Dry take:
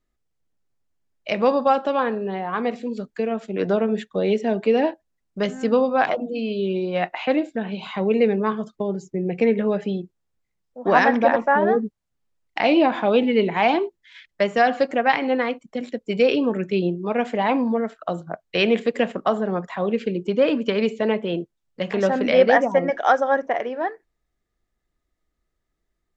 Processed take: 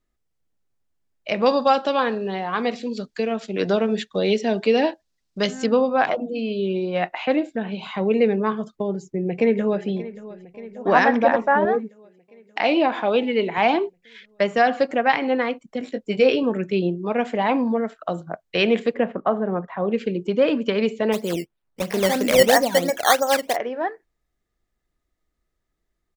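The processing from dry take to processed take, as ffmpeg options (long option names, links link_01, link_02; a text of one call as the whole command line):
ffmpeg -i in.wav -filter_complex "[0:a]asettb=1/sr,asplit=3[link_01][link_02][link_03];[link_01]atrim=end=1.464[link_04];[link_02]atrim=start=1.46:end=5.66,asetpts=PTS-STARTPTS,afade=type=in:duration=0.004:curve=qsin,afade=type=out:start_time=4.196:duration=0.004:curve=qsin,equalizer=frequency=4700:width_type=o:width=1.5:gain=11.5[link_05];[link_03]atrim=start=5.656[link_06];[link_04][link_05]acrossfade=duration=0.004:curve1=hsin:curve2=qsin[link_07];[link_07][link_06]acrossfade=duration=0.004:curve1=qsin:curve2=hsin,asplit=2[link_08][link_09];[link_09]afade=type=in:start_time=8.75:duration=0.01,afade=type=out:start_time=9.86:duration=0.01,aecho=0:1:580|1160|1740|2320|2900|3480|4060|4640:0.149624|0.104736|0.0733155|0.0513209|0.0359246|0.0251472|0.0176031|0.0123221[link_10];[link_08][link_10]amix=inputs=2:normalize=0,asettb=1/sr,asplit=3[link_11][link_12][link_13];[link_11]atrim=end=11.654[link_14];[link_12]atrim=start=11.65:end=13.58,asetpts=PTS-STARTPTS,afade=type=in:duration=0.004:curve=qsin,afade=type=out:start_time=1.926:duration=0.004:curve=qsin,highpass=frequency=330:poles=1[link_15];[link_13]atrim=start=13.576[link_16];[link_14][link_15]acrossfade=duration=0.004:curve1=hsin:curve2=qsin[link_17];[link_17][link_16]acrossfade=duration=0.004:curve1=qsin:curve2=hsin,asettb=1/sr,asplit=3[link_18][link_19][link_20];[link_18]atrim=end=15.794[link_21];[link_19]atrim=start=15.79:end=16.43,asetpts=PTS-STARTPTS,afade=type=in:duration=0.004:curve=qsin,afade=type=out:start_time=0.636:duration=0.004:curve=qsin,asplit=2[link_22][link_23];[link_23]adelay=19,volume=-7.5dB[link_24];[link_22][link_24]amix=inputs=2:normalize=0,atrim=end_sample=28224[link_25];[link_20]atrim=start=16.426[link_26];[link_21][link_25]acrossfade=duration=0.004:curve1=hsin:curve2=qsin[link_27];[link_27][link_26]acrossfade=duration=0.004:curve1=qsin:curve2=hsin,asettb=1/sr,asplit=3[link_28][link_29][link_30];[link_28]atrim=end=18.944[link_31];[link_29]atrim=start=18.94:end=19.92,asetpts=PTS-STARTPTS,afade=type=in:duration=0.004:curve=qsin,afade=type=out:start_time=0.976:duration=0.004:curve=qsin,lowpass=1700[link_32];[link_30]atrim=start=19.916[link_33];[link_31][link_32]acrossfade=duration=0.004:curve1=hsin:curve2=qsin[link_34];[link_34][link_33]acrossfade=duration=0.004:curve1=qsin:curve2=hsin,asplit=3[link_35][link_36][link_37];[link_35]afade=type=out:start_time=21.12:duration=0.02[link_38];[link_36]acrusher=samples=12:mix=1:aa=0.000001:lfo=1:lforange=12:lforate=3,afade=type=in:start_time=21.12:duration=0.02,afade=type=out:start_time=23.55:duration=0.02[link_39];[link_37]afade=type=in:start_time=23.55:duration=0.02[link_40];[link_38][link_39][link_40]amix=inputs=3:normalize=0" out.wav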